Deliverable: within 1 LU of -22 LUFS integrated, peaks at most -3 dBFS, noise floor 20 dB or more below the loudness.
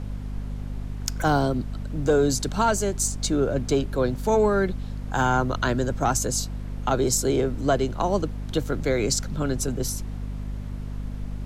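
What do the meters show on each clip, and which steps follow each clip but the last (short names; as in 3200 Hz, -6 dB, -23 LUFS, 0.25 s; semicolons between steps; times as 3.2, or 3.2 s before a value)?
hum 50 Hz; harmonics up to 250 Hz; hum level -29 dBFS; noise floor -33 dBFS; noise floor target -45 dBFS; loudness -25.0 LUFS; peak -10.5 dBFS; loudness target -22.0 LUFS
-> de-hum 50 Hz, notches 5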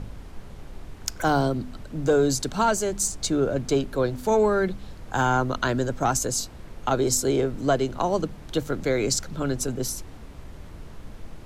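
hum none; noise floor -42 dBFS; noise floor target -45 dBFS
-> noise print and reduce 6 dB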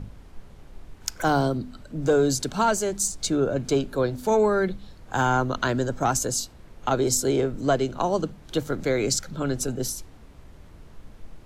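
noise floor -48 dBFS; loudness -25.0 LUFS; peak -10.5 dBFS; loudness target -22.0 LUFS
-> gain +3 dB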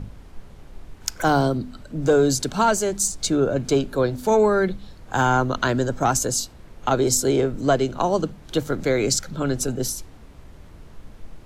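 loudness -22.0 LUFS; peak -7.5 dBFS; noise floor -45 dBFS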